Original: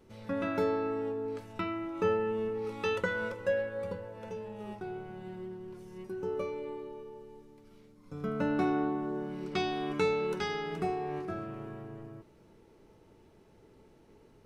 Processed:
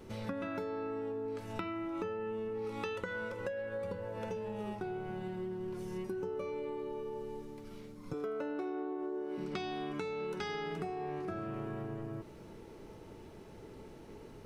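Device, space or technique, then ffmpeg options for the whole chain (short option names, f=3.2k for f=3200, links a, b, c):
serial compression, leveller first: -filter_complex "[0:a]asettb=1/sr,asplit=3[a][b][c];[a]atrim=end=8.134[d];[b]atrim=start=8.13:end=9.38,asetpts=PTS-STARTPTS,afade=t=in:d=0.004:c=qsin,afade=t=out:st=1.246:d=0.004:c=qsin,lowshelf=f=250:t=q:w=3:g=-12[e];[c]atrim=start=9.376[f];[d][e]acrossfade=d=0.004:c1=hsin:c2=qsin[g];[g][f]acrossfade=d=0.004:c1=qsin:c2=hsin,acompressor=threshold=-34dB:ratio=2.5,acompressor=threshold=-45dB:ratio=6,volume=8.5dB"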